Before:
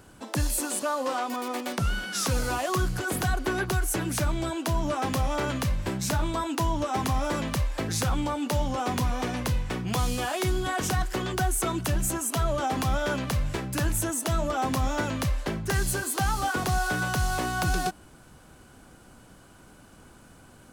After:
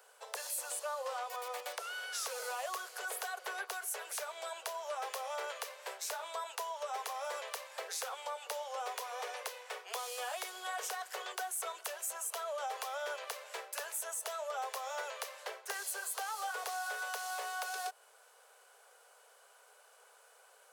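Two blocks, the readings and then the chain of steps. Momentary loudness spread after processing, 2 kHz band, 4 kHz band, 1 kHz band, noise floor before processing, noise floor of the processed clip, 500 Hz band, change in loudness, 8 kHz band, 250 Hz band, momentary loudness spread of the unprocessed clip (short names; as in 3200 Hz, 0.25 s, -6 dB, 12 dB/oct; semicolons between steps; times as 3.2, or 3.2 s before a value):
5 LU, -9.5 dB, -9.0 dB, -9.5 dB, -53 dBFS, -63 dBFS, -11.0 dB, -11.5 dB, -8.5 dB, under -35 dB, 3 LU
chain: steep high-pass 430 Hz 96 dB/oct; high shelf 11000 Hz +4.5 dB; compressor 2:1, threshold -32 dBFS, peak gain reduction 5 dB; gain -6.5 dB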